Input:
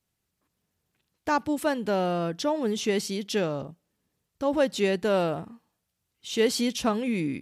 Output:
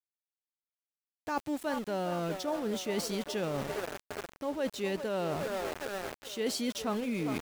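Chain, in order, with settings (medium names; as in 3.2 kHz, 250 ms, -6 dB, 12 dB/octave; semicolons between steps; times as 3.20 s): feedback echo behind a band-pass 407 ms, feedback 68%, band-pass 770 Hz, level -10 dB; vibrato 0.45 Hz 6 cents; small samples zeroed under -35 dBFS; reverse; compression 6:1, threshold -33 dBFS, peak gain reduction 14.5 dB; reverse; trim +2.5 dB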